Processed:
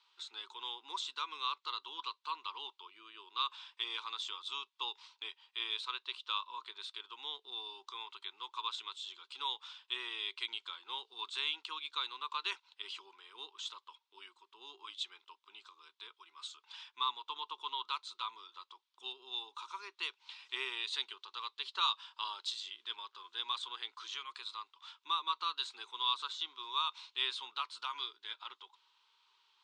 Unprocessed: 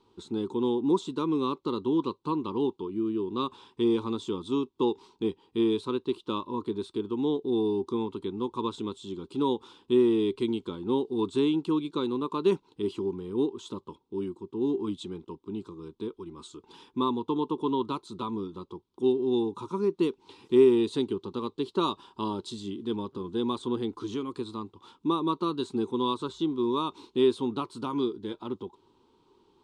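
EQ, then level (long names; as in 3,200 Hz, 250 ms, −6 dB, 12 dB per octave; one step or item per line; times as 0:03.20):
four-pole ladder high-pass 1,300 Hz, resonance 20%
high-frequency loss of the air 150 metres
high-shelf EQ 6,000 Hz +10 dB
+10.0 dB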